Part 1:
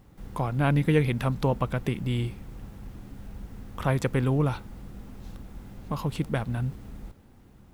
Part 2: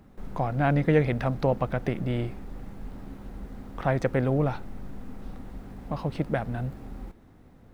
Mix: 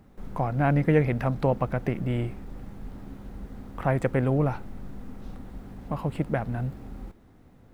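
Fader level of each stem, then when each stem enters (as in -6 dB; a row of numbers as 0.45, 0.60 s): -11.0, -1.5 dB; 0.00, 0.00 s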